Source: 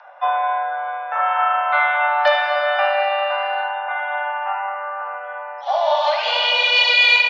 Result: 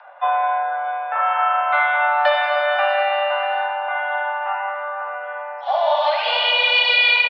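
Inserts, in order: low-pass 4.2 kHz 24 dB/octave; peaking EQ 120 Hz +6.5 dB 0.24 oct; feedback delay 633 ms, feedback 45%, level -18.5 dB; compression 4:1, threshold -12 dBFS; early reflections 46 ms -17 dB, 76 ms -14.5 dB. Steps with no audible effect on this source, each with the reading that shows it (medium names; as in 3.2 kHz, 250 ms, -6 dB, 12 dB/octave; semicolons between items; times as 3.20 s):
peaking EQ 120 Hz: input has nothing below 480 Hz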